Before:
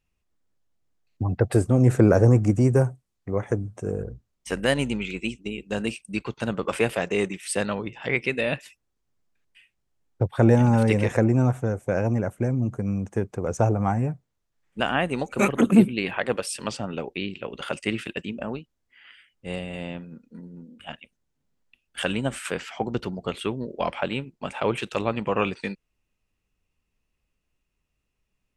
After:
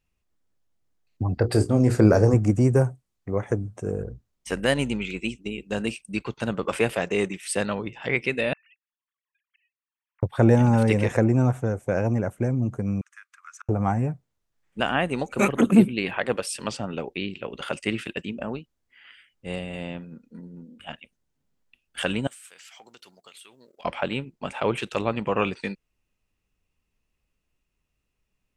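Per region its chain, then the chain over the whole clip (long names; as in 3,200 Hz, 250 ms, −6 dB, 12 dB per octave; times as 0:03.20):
0:01.34–0:02.34: parametric band 4,700 Hz +14.5 dB 0.25 octaves + mains-hum notches 60/120/180/240/300/360/420/480 Hz + double-tracking delay 28 ms −11.5 dB
0:08.53–0:10.23: three sine waves on the formant tracks + inverse Chebyshev high-pass filter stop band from 410 Hz, stop band 50 dB + volume swells 622 ms
0:13.01–0:13.69: Butterworth high-pass 1,200 Hz 72 dB per octave + high-shelf EQ 2,600 Hz −9.5 dB + gate with flip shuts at −28 dBFS, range −36 dB
0:22.27–0:23.85: first difference + downward compressor 12 to 1, threshold −47 dBFS + leveller curve on the samples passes 1
whole clip: no processing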